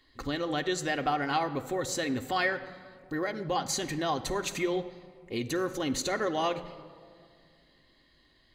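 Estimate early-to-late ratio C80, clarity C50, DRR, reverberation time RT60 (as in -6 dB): 15.0 dB, 13.5 dB, 5.0 dB, 2.1 s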